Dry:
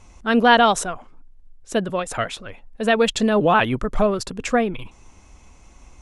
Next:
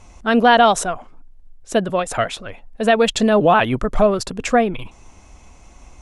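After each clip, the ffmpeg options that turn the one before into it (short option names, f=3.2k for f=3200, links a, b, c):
-filter_complex "[0:a]asplit=2[a][b];[b]alimiter=limit=-11dB:level=0:latency=1:release=157,volume=1dB[c];[a][c]amix=inputs=2:normalize=0,equalizer=f=680:w=3.2:g=4,volume=-3.5dB"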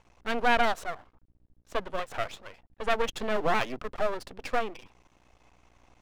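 -filter_complex "[0:a]acrossover=split=260 4300:gain=0.224 1 0.2[a][b][c];[a][b][c]amix=inputs=3:normalize=0,aeval=exprs='val(0)+0.00224*(sin(2*PI*60*n/s)+sin(2*PI*2*60*n/s)/2+sin(2*PI*3*60*n/s)/3+sin(2*PI*4*60*n/s)/4+sin(2*PI*5*60*n/s)/5)':c=same,aeval=exprs='max(val(0),0)':c=same,volume=-7.5dB"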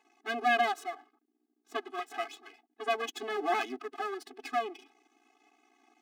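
-af "afftfilt=real='re*eq(mod(floor(b*sr/1024/220),2),1)':imag='im*eq(mod(floor(b*sr/1024/220),2),1)':win_size=1024:overlap=0.75"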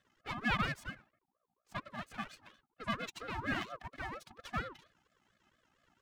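-af "aeval=exprs='val(0)*sin(2*PI*720*n/s+720*0.35/4.3*sin(2*PI*4.3*n/s))':c=same,volume=-3.5dB"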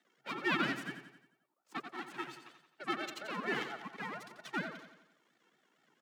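-af "aecho=1:1:88|176|264|352|440|528:0.335|0.171|0.0871|0.0444|0.0227|0.0116,afreqshift=130"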